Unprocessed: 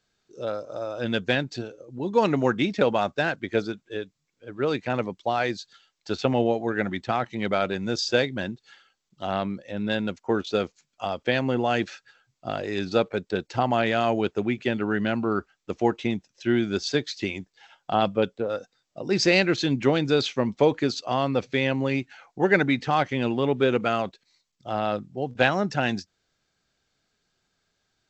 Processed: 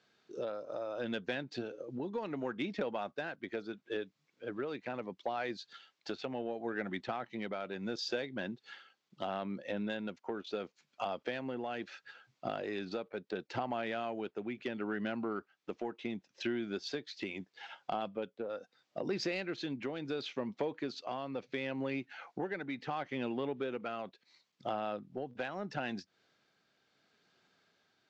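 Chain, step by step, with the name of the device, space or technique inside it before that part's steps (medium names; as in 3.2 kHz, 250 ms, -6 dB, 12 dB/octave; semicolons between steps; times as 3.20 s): AM radio (band-pass 180–4100 Hz; compression 6:1, threshold -38 dBFS, peak gain reduction 22 dB; saturation -26.5 dBFS, distortion -24 dB; tremolo 0.73 Hz, depth 31%); trim +4.5 dB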